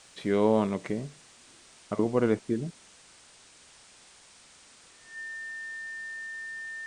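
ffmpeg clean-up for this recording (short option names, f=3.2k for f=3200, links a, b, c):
-af "bandreject=f=1.8k:w=30,afwtdn=0.0025"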